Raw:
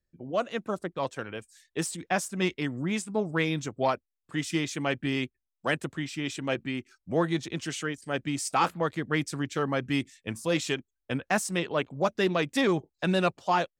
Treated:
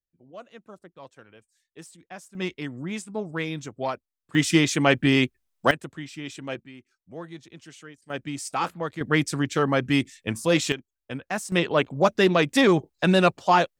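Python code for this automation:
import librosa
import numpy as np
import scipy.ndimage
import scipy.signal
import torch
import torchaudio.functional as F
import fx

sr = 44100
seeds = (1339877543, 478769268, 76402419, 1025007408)

y = fx.gain(x, sr, db=fx.steps((0.0, -14.0), (2.35, -2.5), (4.35, 9.5), (5.71, -3.5), (6.6, -12.5), (8.1, -2.0), (9.01, 6.0), (10.72, -3.0), (11.52, 6.5)))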